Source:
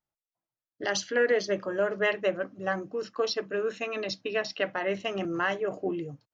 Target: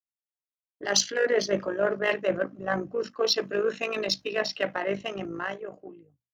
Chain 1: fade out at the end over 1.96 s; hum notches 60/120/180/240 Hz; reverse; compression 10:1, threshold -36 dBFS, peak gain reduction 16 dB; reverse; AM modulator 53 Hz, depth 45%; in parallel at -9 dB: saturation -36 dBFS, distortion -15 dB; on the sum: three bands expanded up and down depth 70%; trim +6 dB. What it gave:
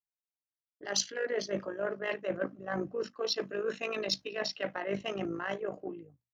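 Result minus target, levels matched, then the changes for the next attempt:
compression: peak gain reduction +9.5 dB
change: compression 10:1, threshold -25.5 dBFS, peak gain reduction 6.5 dB

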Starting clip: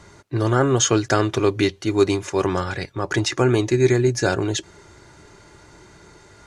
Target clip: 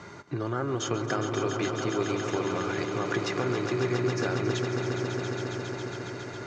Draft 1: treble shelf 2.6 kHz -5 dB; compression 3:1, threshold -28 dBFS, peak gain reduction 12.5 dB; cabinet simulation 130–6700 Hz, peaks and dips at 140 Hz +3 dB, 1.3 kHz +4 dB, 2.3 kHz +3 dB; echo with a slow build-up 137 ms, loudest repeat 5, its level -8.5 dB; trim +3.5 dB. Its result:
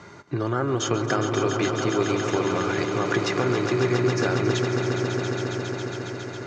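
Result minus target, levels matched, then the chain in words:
compression: peak gain reduction -5.5 dB
treble shelf 2.6 kHz -5 dB; compression 3:1, threshold -36 dBFS, peak gain reduction 18 dB; cabinet simulation 130–6700 Hz, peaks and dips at 140 Hz +3 dB, 1.3 kHz +4 dB, 2.3 kHz +3 dB; echo with a slow build-up 137 ms, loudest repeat 5, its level -8.5 dB; trim +3.5 dB

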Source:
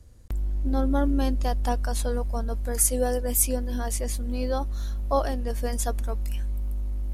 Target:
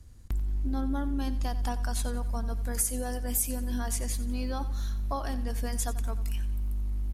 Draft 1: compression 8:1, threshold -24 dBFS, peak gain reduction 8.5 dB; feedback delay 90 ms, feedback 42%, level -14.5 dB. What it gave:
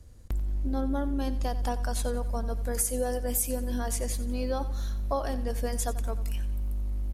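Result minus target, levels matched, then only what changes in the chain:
500 Hz band +6.5 dB
add after compression: peaking EQ 520 Hz -8.5 dB 0.75 oct

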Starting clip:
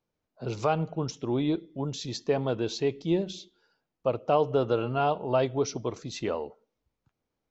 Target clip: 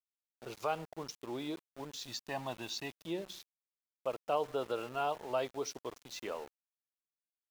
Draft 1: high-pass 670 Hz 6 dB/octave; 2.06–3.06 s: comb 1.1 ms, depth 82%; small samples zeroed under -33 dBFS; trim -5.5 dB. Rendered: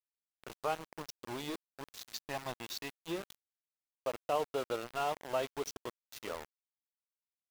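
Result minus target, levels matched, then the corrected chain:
small samples zeroed: distortion +10 dB
high-pass 670 Hz 6 dB/octave; 2.06–3.06 s: comb 1.1 ms, depth 82%; small samples zeroed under -42.5 dBFS; trim -5.5 dB

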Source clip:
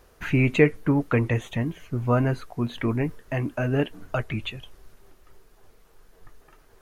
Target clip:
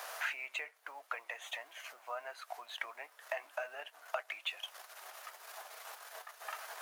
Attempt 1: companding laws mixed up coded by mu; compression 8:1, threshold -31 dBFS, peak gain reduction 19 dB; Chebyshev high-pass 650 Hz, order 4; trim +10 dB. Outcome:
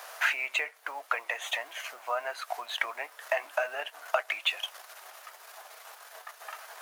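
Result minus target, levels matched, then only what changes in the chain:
compression: peak gain reduction -10.5 dB
change: compression 8:1, threshold -43 dBFS, peak gain reduction 29.5 dB

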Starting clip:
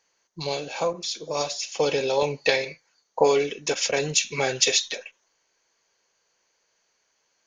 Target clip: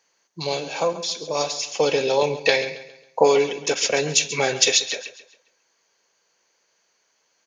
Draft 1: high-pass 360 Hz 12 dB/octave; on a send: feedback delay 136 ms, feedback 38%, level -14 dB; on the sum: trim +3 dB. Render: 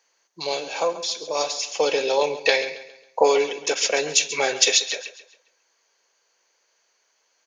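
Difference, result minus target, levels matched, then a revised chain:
125 Hz band -13.5 dB
high-pass 120 Hz 12 dB/octave; on a send: feedback delay 136 ms, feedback 38%, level -14 dB; on the sum: trim +3 dB

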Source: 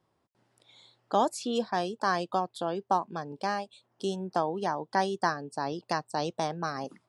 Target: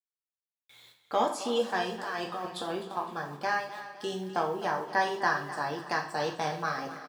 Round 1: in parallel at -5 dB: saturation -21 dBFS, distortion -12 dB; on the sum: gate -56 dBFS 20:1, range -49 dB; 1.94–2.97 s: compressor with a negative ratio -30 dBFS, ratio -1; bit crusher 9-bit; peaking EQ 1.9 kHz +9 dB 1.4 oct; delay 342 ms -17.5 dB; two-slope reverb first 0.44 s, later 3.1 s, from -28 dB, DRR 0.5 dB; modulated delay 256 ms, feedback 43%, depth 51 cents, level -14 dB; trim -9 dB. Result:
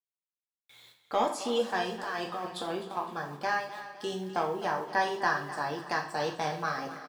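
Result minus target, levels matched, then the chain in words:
saturation: distortion +8 dB
in parallel at -5 dB: saturation -15 dBFS, distortion -20 dB; on the sum: gate -56 dBFS 20:1, range -49 dB; 1.94–2.97 s: compressor with a negative ratio -30 dBFS, ratio -1; bit crusher 9-bit; peaking EQ 1.9 kHz +9 dB 1.4 oct; delay 342 ms -17.5 dB; two-slope reverb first 0.44 s, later 3.1 s, from -28 dB, DRR 0.5 dB; modulated delay 256 ms, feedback 43%, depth 51 cents, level -14 dB; trim -9 dB

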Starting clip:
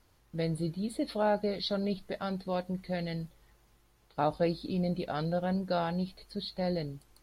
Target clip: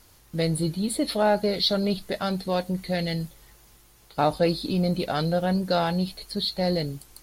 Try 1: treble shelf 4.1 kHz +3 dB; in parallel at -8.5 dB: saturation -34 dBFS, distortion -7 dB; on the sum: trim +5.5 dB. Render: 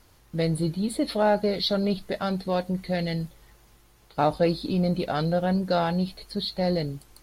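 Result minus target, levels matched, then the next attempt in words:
8 kHz band -6.0 dB
treble shelf 4.1 kHz +11 dB; in parallel at -8.5 dB: saturation -34 dBFS, distortion -7 dB; on the sum: trim +5.5 dB

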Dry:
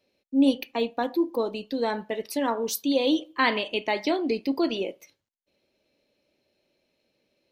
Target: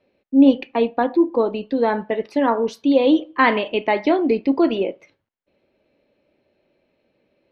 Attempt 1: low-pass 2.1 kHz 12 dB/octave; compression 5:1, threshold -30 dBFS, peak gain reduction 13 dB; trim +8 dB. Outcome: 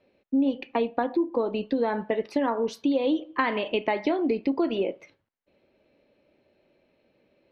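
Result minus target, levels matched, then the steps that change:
compression: peak gain reduction +13 dB
remove: compression 5:1, threshold -30 dBFS, peak gain reduction 13 dB

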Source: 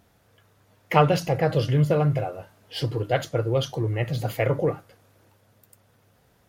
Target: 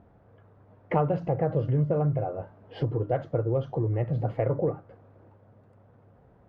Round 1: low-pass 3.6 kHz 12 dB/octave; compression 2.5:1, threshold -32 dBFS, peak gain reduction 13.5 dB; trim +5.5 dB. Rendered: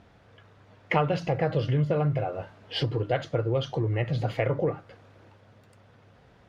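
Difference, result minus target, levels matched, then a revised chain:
4 kHz band +18.0 dB
low-pass 950 Hz 12 dB/octave; compression 2.5:1, threshold -32 dBFS, peak gain reduction 12.5 dB; trim +5.5 dB

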